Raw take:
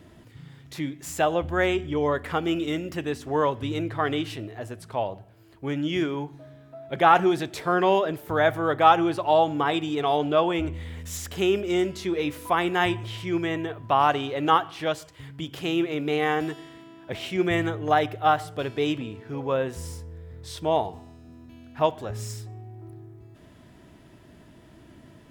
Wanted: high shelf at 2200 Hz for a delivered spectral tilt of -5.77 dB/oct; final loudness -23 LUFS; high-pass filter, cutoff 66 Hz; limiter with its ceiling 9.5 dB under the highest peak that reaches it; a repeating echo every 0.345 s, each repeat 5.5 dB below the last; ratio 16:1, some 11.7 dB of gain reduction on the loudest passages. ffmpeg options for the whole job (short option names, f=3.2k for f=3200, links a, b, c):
-af "highpass=66,highshelf=f=2.2k:g=-8.5,acompressor=threshold=-24dB:ratio=16,alimiter=limit=-23.5dB:level=0:latency=1,aecho=1:1:345|690|1035|1380|1725|2070|2415:0.531|0.281|0.149|0.079|0.0419|0.0222|0.0118,volume=10dB"